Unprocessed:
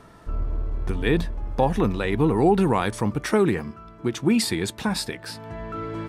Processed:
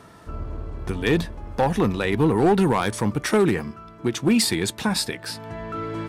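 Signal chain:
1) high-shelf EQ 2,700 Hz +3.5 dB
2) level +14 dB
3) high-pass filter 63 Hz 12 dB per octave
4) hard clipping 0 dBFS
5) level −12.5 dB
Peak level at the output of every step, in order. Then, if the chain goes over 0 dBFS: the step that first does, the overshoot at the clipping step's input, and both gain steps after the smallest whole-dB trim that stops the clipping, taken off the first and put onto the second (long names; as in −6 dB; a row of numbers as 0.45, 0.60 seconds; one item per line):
−6.5, +7.5, +7.5, 0.0, −12.5 dBFS
step 2, 7.5 dB
step 2 +6 dB, step 5 −4.5 dB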